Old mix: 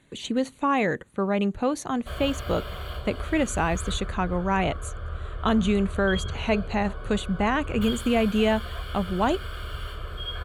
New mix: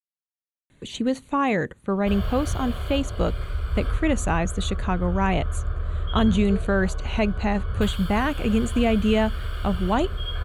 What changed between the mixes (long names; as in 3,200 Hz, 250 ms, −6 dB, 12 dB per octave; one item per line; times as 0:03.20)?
speech: entry +0.70 s
master: add low-shelf EQ 140 Hz +8 dB